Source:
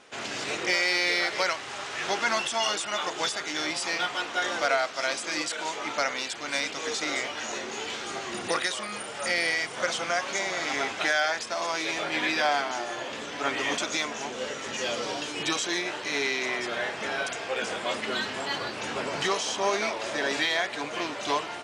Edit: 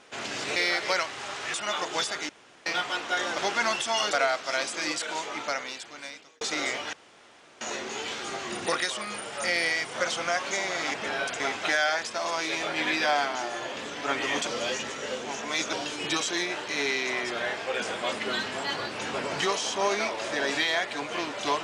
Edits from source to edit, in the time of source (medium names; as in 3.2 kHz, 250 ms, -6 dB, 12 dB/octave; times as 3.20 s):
0.56–1.06 s: delete
2.04–2.79 s: move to 4.63 s
3.54–3.91 s: room tone
5.62–6.91 s: fade out linear
7.43 s: insert room tone 0.68 s
13.83–15.09 s: reverse
16.93–17.39 s: move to 10.76 s